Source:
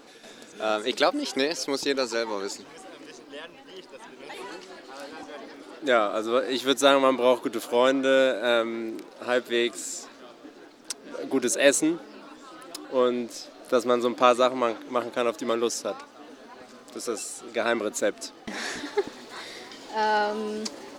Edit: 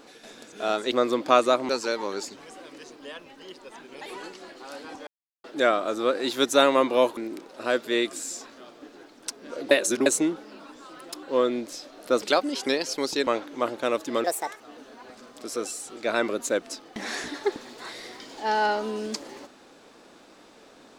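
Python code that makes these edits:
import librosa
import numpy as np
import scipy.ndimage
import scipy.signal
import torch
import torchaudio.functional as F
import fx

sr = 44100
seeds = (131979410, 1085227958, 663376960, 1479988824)

y = fx.edit(x, sr, fx.swap(start_s=0.92, length_s=1.05, other_s=13.84, other_length_s=0.77),
    fx.silence(start_s=5.35, length_s=0.37),
    fx.cut(start_s=7.45, length_s=1.34),
    fx.reverse_span(start_s=11.33, length_s=0.35),
    fx.speed_span(start_s=15.58, length_s=0.54, speed=1.48), tone=tone)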